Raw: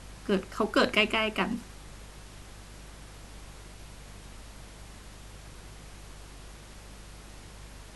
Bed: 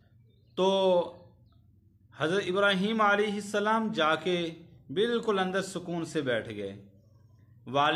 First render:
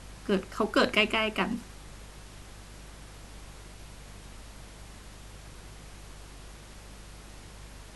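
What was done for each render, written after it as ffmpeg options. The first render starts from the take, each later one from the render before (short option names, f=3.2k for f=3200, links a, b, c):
-af anull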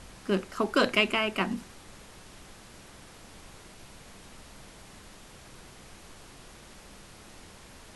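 -af "bandreject=f=50:t=h:w=4,bandreject=f=100:t=h:w=4,bandreject=f=150:t=h:w=4"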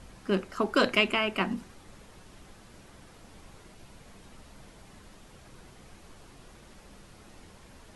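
-af "afftdn=nr=6:nf=-51"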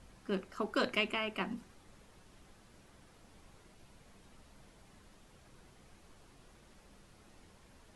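-af "volume=-8.5dB"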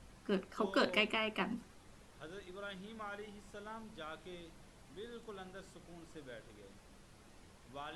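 -filter_complex "[1:a]volume=-22dB[a];[0:a][a]amix=inputs=2:normalize=0"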